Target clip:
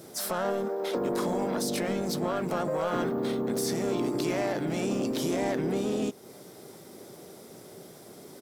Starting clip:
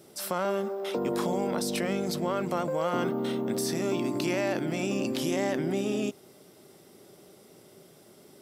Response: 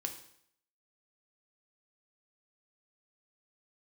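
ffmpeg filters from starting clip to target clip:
-filter_complex "[0:a]equalizer=f=2700:t=o:w=0.29:g=-7.5,asplit=2[s0][s1];[s1]acompressor=threshold=0.0112:ratio=8,volume=1.41[s2];[s0][s2]amix=inputs=2:normalize=0,asoftclip=type=tanh:threshold=0.112,asplit=4[s3][s4][s5][s6];[s4]asetrate=35002,aresample=44100,atempo=1.25992,volume=0.141[s7];[s5]asetrate=52444,aresample=44100,atempo=0.840896,volume=0.447[s8];[s6]asetrate=55563,aresample=44100,atempo=0.793701,volume=0.158[s9];[s3][s7][s8][s9]amix=inputs=4:normalize=0,volume=0.794"

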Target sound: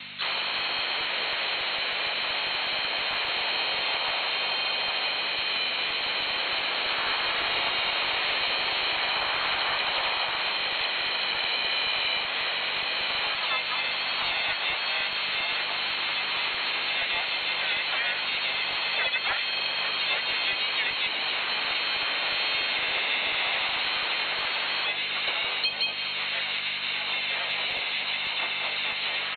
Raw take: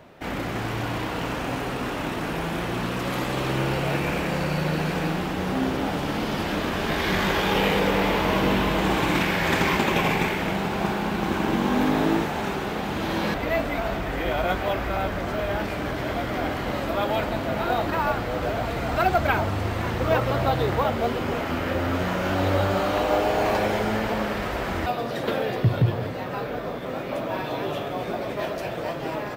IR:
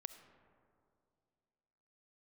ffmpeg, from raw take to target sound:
-filter_complex "[0:a]lowpass=f=2800:t=q:w=0.5098,lowpass=f=2800:t=q:w=0.6013,lowpass=f=2800:t=q:w=0.9,lowpass=f=2800:t=q:w=2.563,afreqshift=-3300,asplit=3[s0][s1][s2];[s1]asetrate=35002,aresample=44100,atempo=1.25992,volume=0.794[s3];[s2]asetrate=58866,aresample=44100,atempo=0.749154,volume=0.891[s4];[s0][s3][s4]amix=inputs=3:normalize=0,aeval=exprs='val(0)+0.00501*(sin(2*PI*50*n/s)+sin(2*PI*2*50*n/s)/2+sin(2*PI*3*50*n/s)/3+sin(2*PI*4*50*n/s)/4+sin(2*PI*5*50*n/s)/5)':c=same,acrossover=split=150|2100[s5][s6][s7];[s5]acrusher=bits=6:mix=0:aa=0.000001[s8];[s8][s6][s7]amix=inputs=3:normalize=0,acrossover=split=130|400|980[s9][s10][s11][s12];[s9]acompressor=threshold=0.00112:ratio=4[s13];[s10]acompressor=threshold=0.00112:ratio=4[s14];[s11]acompressor=threshold=0.0112:ratio=4[s15];[s12]acompressor=threshold=0.02:ratio=4[s16];[s13][s14][s15][s16]amix=inputs=4:normalize=0,volume=1.78"

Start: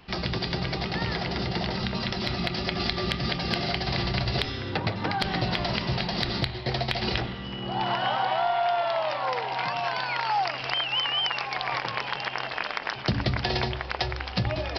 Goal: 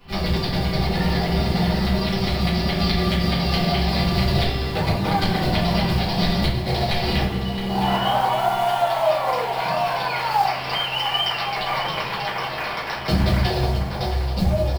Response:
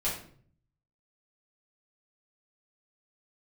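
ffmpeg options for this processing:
-filter_complex "[0:a]asetnsamples=n=441:p=0,asendcmd='13.49 equalizer g -13',equalizer=f=2200:t=o:w=2:g=-4,acrusher=bits=5:mode=log:mix=0:aa=0.000001,aecho=1:1:667:0.299[s0];[1:a]atrim=start_sample=2205[s1];[s0][s1]afir=irnorm=-1:irlink=0"

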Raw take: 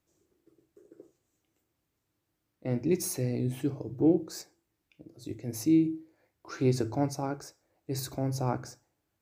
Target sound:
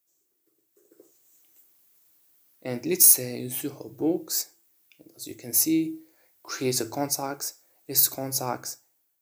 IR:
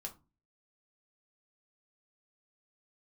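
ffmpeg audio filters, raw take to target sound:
-af "dynaudnorm=f=710:g=3:m=5.62,aemphasis=mode=production:type=riaa,volume=0.398"

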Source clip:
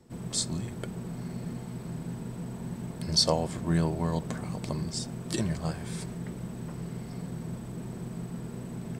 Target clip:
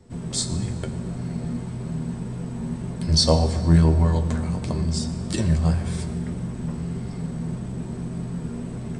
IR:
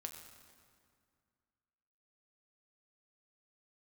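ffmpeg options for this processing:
-filter_complex "[0:a]flanger=delay=9.8:depth=3.2:regen=43:speed=1.7:shape=sinusoidal,asplit=2[s0][s1];[1:a]atrim=start_sample=2205,lowshelf=f=160:g=11[s2];[s1][s2]afir=irnorm=-1:irlink=0,volume=2.37[s3];[s0][s3]amix=inputs=2:normalize=0,aresample=22050,aresample=44100"

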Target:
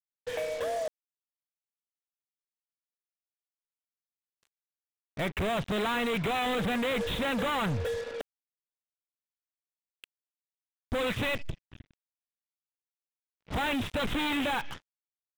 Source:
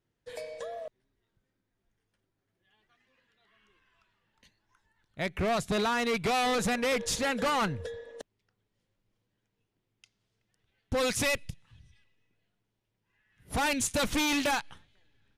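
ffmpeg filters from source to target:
-af "aresample=8000,asoftclip=type=hard:threshold=0.0133,aresample=44100,acrusher=bits=7:mix=0:aa=0.5,volume=2.66"

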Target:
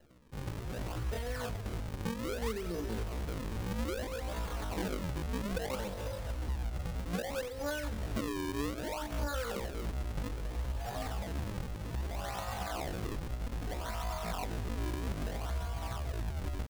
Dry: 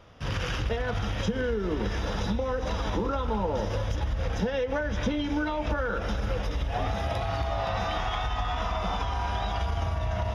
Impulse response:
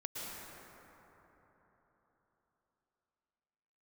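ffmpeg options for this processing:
-af "flanger=delay=15.5:depth=2.2:speed=0.28,acrusher=samples=37:mix=1:aa=0.000001:lfo=1:lforange=59.2:lforate=1,atempo=0.62,volume=0.562"

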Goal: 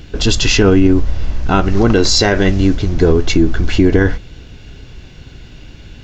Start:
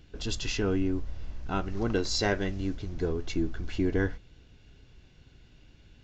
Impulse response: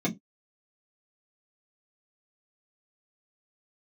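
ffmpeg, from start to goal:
-af "alimiter=level_in=11.2:limit=0.891:release=50:level=0:latency=1,volume=0.891"

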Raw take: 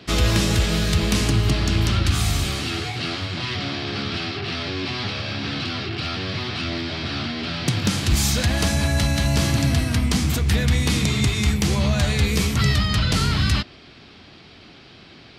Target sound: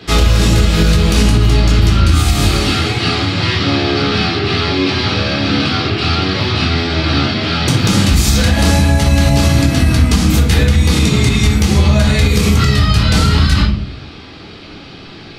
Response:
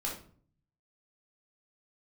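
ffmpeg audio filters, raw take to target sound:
-filter_complex "[1:a]atrim=start_sample=2205[s0];[0:a][s0]afir=irnorm=-1:irlink=0,alimiter=limit=0.299:level=0:latency=1:release=147,volume=2.66"

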